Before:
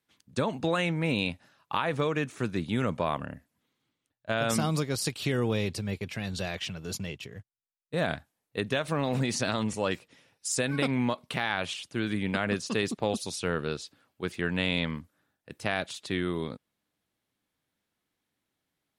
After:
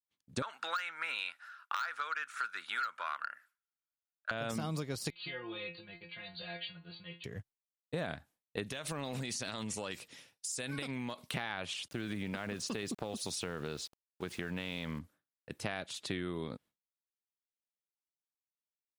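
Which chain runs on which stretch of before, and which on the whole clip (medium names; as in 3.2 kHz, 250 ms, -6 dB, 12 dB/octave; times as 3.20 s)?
0.42–4.31 s: resonant high-pass 1.4 kHz, resonance Q 10 + band-stop 6.4 kHz, Q 25 + transformer saturation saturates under 2.5 kHz
5.10–7.24 s: brick-wall FIR low-pass 4.6 kHz + tilt shelf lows -6 dB, about 710 Hz + inharmonic resonator 170 Hz, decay 0.31 s, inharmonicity 0.002
8.63–11.34 s: treble shelf 2.5 kHz +11 dB + compression 12:1, threshold -33 dBFS
11.88–14.99 s: compression, threshold -31 dBFS + small samples zeroed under -51 dBFS
whole clip: de-esser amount 65%; expander -52 dBFS; compression 6:1, threshold -34 dBFS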